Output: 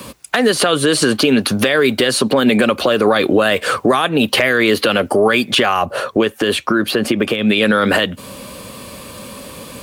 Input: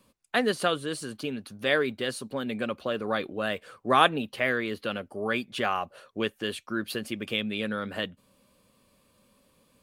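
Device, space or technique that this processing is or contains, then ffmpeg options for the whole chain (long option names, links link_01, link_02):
mastering chain: -filter_complex "[0:a]highpass=55,equalizer=frequency=190:width_type=o:width=0.89:gain=-2.5,acrossover=split=200|4700[link_01][link_02][link_03];[link_01]acompressor=threshold=-55dB:ratio=4[link_04];[link_02]acompressor=threshold=-34dB:ratio=4[link_05];[link_03]acompressor=threshold=-51dB:ratio=4[link_06];[link_04][link_05][link_06]amix=inputs=3:normalize=0,acompressor=threshold=-41dB:ratio=2,asoftclip=type=hard:threshold=-27.5dB,alimiter=level_in=35dB:limit=-1dB:release=50:level=0:latency=1,asplit=3[link_07][link_08][link_09];[link_07]afade=type=out:start_time=5.81:duration=0.02[link_10];[link_08]adynamicequalizer=threshold=0.0447:dfrequency=1700:dqfactor=0.7:tfrequency=1700:tqfactor=0.7:attack=5:release=100:ratio=0.375:range=3.5:mode=cutabove:tftype=highshelf,afade=type=in:start_time=5.81:duration=0.02,afade=type=out:start_time=7.41:duration=0.02[link_11];[link_09]afade=type=in:start_time=7.41:duration=0.02[link_12];[link_10][link_11][link_12]amix=inputs=3:normalize=0,volume=-3dB"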